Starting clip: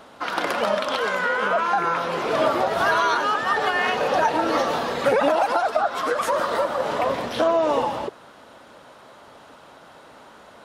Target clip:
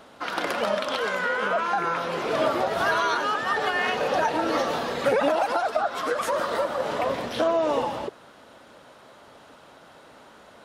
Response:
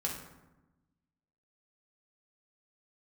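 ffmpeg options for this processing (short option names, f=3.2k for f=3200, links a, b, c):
-af "equalizer=f=980:w=1.5:g=-2.5,volume=-2dB"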